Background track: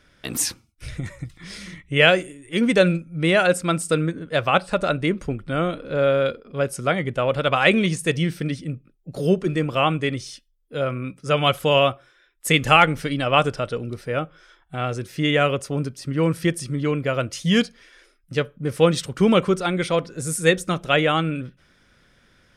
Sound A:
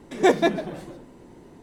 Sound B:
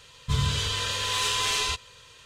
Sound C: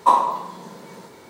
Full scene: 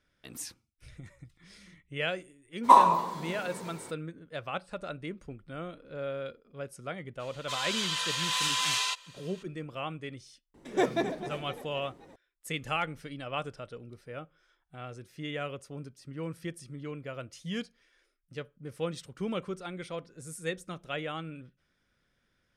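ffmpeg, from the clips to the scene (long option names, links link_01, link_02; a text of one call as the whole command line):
ffmpeg -i bed.wav -i cue0.wav -i cue1.wav -i cue2.wav -filter_complex "[0:a]volume=-17dB[link_01];[2:a]highpass=frequency=650:width=0.5412,highpass=frequency=650:width=1.3066[link_02];[1:a]asplit=7[link_03][link_04][link_05][link_06][link_07][link_08][link_09];[link_04]adelay=260,afreqshift=34,volume=-12dB[link_10];[link_05]adelay=520,afreqshift=68,volume=-17.5dB[link_11];[link_06]adelay=780,afreqshift=102,volume=-23dB[link_12];[link_07]adelay=1040,afreqshift=136,volume=-28.5dB[link_13];[link_08]adelay=1300,afreqshift=170,volume=-34.1dB[link_14];[link_09]adelay=1560,afreqshift=204,volume=-39.6dB[link_15];[link_03][link_10][link_11][link_12][link_13][link_14][link_15]amix=inputs=7:normalize=0[link_16];[3:a]atrim=end=1.29,asetpts=PTS-STARTPTS,volume=-1.5dB,afade=type=in:duration=0.02,afade=type=out:start_time=1.27:duration=0.02,adelay=2630[link_17];[link_02]atrim=end=2.25,asetpts=PTS-STARTPTS,volume=-2.5dB,afade=type=in:duration=0.02,afade=type=out:start_time=2.23:duration=0.02,adelay=7190[link_18];[link_16]atrim=end=1.62,asetpts=PTS-STARTPTS,volume=-9dB,afade=type=in:duration=0.004:curve=hsin,afade=type=out:start_time=1.616:duration=0.004:curve=hsin,adelay=10540[link_19];[link_01][link_17][link_18][link_19]amix=inputs=4:normalize=0" out.wav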